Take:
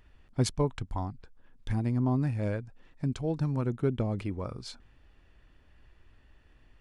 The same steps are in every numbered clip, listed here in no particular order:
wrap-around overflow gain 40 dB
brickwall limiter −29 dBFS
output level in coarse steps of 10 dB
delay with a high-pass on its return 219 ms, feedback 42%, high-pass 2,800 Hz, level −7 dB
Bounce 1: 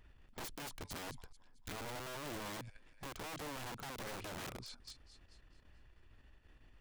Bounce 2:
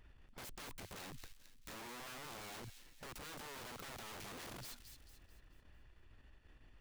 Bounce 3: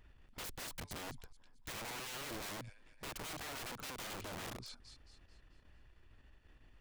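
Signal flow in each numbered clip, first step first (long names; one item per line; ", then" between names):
delay with a high-pass on its return, then brickwall limiter, then output level in coarse steps, then wrap-around overflow
brickwall limiter, then wrap-around overflow, then output level in coarse steps, then delay with a high-pass on its return
output level in coarse steps, then delay with a high-pass on its return, then wrap-around overflow, then brickwall limiter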